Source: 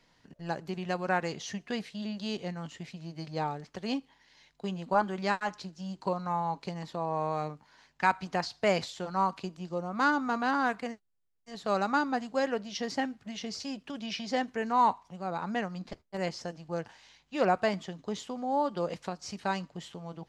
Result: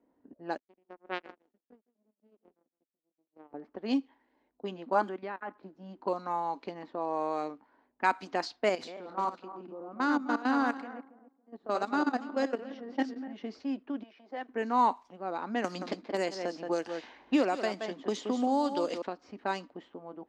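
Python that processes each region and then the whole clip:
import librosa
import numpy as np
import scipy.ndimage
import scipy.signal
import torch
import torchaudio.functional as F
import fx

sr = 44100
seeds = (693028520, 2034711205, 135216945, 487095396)

y = fx.chain(x, sr, fx.high_shelf(hz=3600.0, db=3.0),
    fx.echo_feedback(ms=159, feedback_pct=18, wet_db=-6.5),
    fx.power_curve(exponent=3.0), at=(0.57, 3.54))
y = fx.chain(y, sr, fx.level_steps(step_db=12),
    fx.lowpass(hz=2600.0, slope=12), at=(5.09, 5.63))
y = fx.chain(y, sr, fx.reverse_delay_fb(ms=139, feedback_pct=42, wet_db=-5.0),
    fx.level_steps(step_db=14), at=(8.69, 13.34))
y = fx.chain(y, sr, fx.level_steps(step_db=11),
    fx.highpass(hz=530.0, slope=12), at=(14.03, 14.49))
y = fx.chain(y, sr, fx.high_shelf(hz=5100.0, db=6.0),
    fx.echo_single(ms=174, db=-9.5),
    fx.band_squash(depth_pct=100), at=(15.64, 19.02))
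y = fx.env_lowpass(y, sr, base_hz=620.0, full_db=-26.0)
y = scipy.signal.sosfilt(scipy.signal.butter(2, 44.0, 'highpass', fs=sr, output='sos'), y)
y = fx.low_shelf_res(y, sr, hz=200.0, db=-10.0, q=3.0)
y = y * 10.0 ** (-1.5 / 20.0)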